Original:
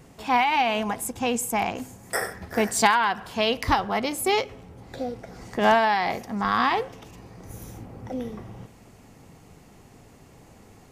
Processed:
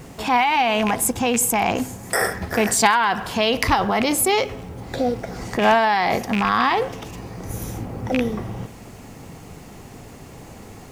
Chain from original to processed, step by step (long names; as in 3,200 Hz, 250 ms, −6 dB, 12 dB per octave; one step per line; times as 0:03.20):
loose part that buzzes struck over −30 dBFS, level −19 dBFS
in parallel at −2 dB: compressor whose output falls as the input rises −29 dBFS, ratio −0.5
on the sum: bit reduction 10 bits
level +2.5 dB